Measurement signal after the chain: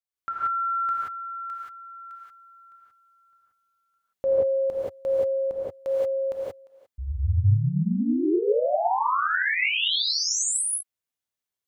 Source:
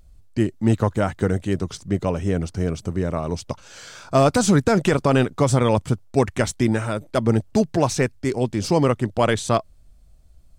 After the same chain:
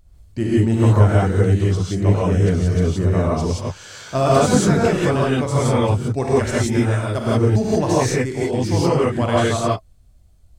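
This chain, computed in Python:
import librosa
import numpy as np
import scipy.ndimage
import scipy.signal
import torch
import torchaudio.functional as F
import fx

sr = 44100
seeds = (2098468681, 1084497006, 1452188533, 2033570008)

y = fx.peak_eq(x, sr, hz=88.0, db=5.0, octaves=0.88)
y = fx.rider(y, sr, range_db=4, speed_s=2.0)
y = fx.rev_gated(y, sr, seeds[0], gate_ms=200, shape='rising', drr_db=-7.0)
y = y * 10.0 ** (-6.0 / 20.0)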